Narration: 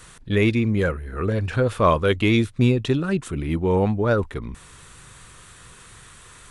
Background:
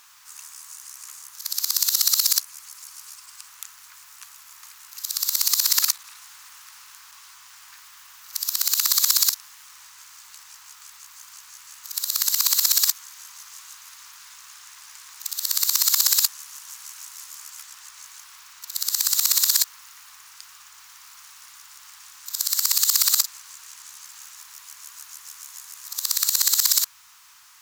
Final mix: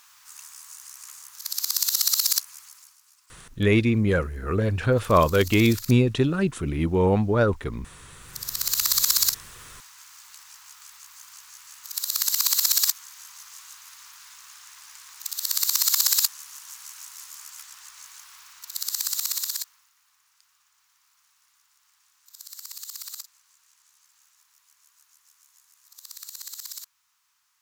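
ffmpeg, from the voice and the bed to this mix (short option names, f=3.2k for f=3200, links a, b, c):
-filter_complex "[0:a]adelay=3300,volume=-0.5dB[a];[1:a]volume=12.5dB,afade=t=out:st=2.54:d=0.44:silence=0.188365,afade=t=in:st=8.12:d=0.7:silence=0.177828,afade=t=out:st=18.48:d=1.43:silence=0.141254[b];[a][b]amix=inputs=2:normalize=0"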